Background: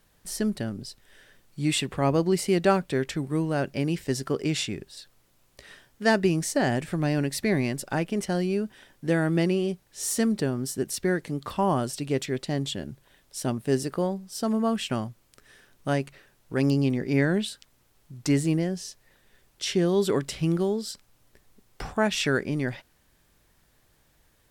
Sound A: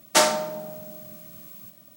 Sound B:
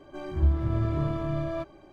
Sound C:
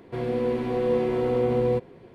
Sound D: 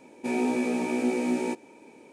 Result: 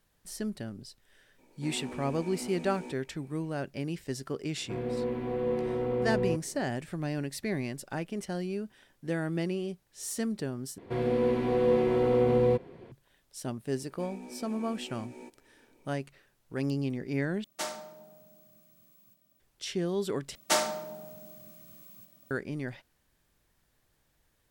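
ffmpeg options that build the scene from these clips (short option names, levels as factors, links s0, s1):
-filter_complex "[4:a]asplit=2[s0][s1];[3:a]asplit=2[s2][s3];[1:a]asplit=2[s4][s5];[0:a]volume=0.398[s6];[s0]asoftclip=type=tanh:threshold=0.075[s7];[s2]bass=f=250:g=2,treble=f=4000:g=-10[s8];[s1]alimiter=limit=0.0708:level=0:latency=1:release=356[s9];[s6]asplit=4[s10][s11][s12][s13];[s10]atrim=end=10.784[s14];[s3]atrim=end=2.14,asetpts=PTS-STARTPTS,volume=0.891[s15];[s11]atrim=start=12.916:end=17.444[s16];[s4]atrim=end=1.96,asetpts=PTS-STARTPTS,volume=0.133[s17];[s12]atrim=start=19.396:end=20.354[s18];[s5]atrim=end=1.96,asetpts=PTS-STARTPTS,volume=0.398[s19];[s13]atrim=start=22.306[s20];[s7]atrim=end=2.12,asetpts=PTS-STARTPTS,volume=0.237,afade=t=in:d=0.004:c=hsin,afade=t=out:st=2.116:d=0.004:c=hsin,adelay=1380[s21];[s8]atrim=end=2.14,asetpts=PTS-STARTPTS,volume=0.447,afade=t=in:d=0.004:c=hsin,afade=t=out:st=2.136:d=0.004:c=hsin,adelay=201537S[s22];[s9]atrim=end=2.12,asetpts=PTS-STARTPTS,volume=0.211,afade=t=in:d=0.004:c=hsin,afade=t=out:st=2.116:d=0.004:c=hsin,adelay=13750[s23];[s14][s15]acrossfade=d=0.004:c1=hsin:c2=hsin[s24];[s24][s16]acrossfade=d=0.004:c1=hsin:c2=hsin[s25];[s25][s17]acrossfade=d=0.004:c1=hsin:c2=hsin[s26];[s26][s18]acrossfade=d=0.004:c1=hsin:c2=hsin[s27];[s27][s19]acrossfade=d=0.004:c1=hsin:c2=hsin[s28];[s28][s20]acrossfade=d=0.004:c1=hsin:c2=hsin[s29];[s29][s21][s22][s23]amix=inputs=4:normalize=0"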